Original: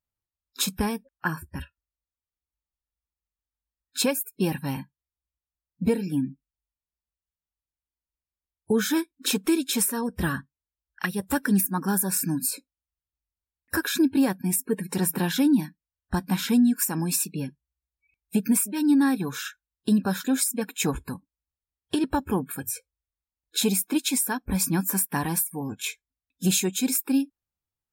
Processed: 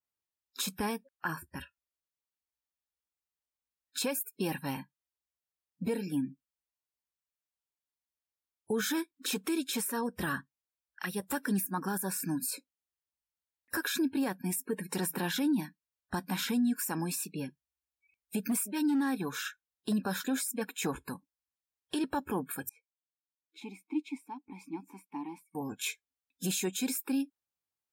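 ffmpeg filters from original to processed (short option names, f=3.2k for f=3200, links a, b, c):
-filter_complex "[0:a]asettb=1/sr,asplit=3[a][b][c];[a]atrim=end=18.444[d];[b]atrim=start=18.44:end=19.93,asetpts=PTS-STARTPTS,afade=t=in:d=0.004:c=qsin,afade=t=out:st=1.486:d=0.004:c=qsin,asoftclip=type=hard:threshold=-16dB[e];[c]atrim=start=19.926[f];[d][e]acrossfade=d=0.004:c1=hsin:c2=qsin[g];[g][f]acrossfade=d=0.004:c1=qsin:c2=hsin,asettb=1/sr,asplit=3[h][i][j];[h]atrim=end=22.694[k];[i]atrim=start=22.69:end=25.55,asetpts=PTS-STARTPTS,afade=t=in:d=0.004:c=qsin,afade=t=out:st=2.856:d=0.004:c=qsin,asplit=3[l][m][n];[l]bandpass=f=300:t=q:w=8,volume=0dB[o];[m]bandpass=f=870:t=q:w=8,volume=-6dB[p];[n]bandpass=f=2.24k:t=q:w=8,volume=-9dB[q];[o][p][q]amix=inputs=3:normalize=0[r];[j]atrim=start=25.546[s];[k][r]acrossfade=d=0.004:c1=hsin:c2=qsin[t];[t][s]acrossfade=d=0.004:c1=qsin:c2=hsin,highpass=f=320:p=1,alimiter=limit=-21dB:level=0:latency=1:release=29,adynamicequalizer=threshold=0.00501:dfrequency=3200:dqfactor=0.7:tfrequency=3200:tqfactor=0.7:attack=5:release=100:ratio=0.375:range=2:mode=cutabove:tftype=highshelf,volume=-2dB"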